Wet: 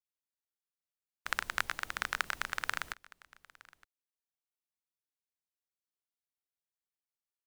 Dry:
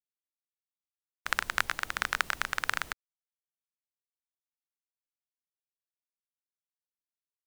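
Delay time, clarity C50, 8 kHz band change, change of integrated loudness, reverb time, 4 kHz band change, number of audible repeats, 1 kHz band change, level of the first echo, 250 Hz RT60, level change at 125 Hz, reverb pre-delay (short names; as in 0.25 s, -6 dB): 0.915 s, none, -4.5 dB, -4.5 dB, none, -4.5 dB, 1, -4.5 dB, -23.0 dB, none, -4.5 dB, none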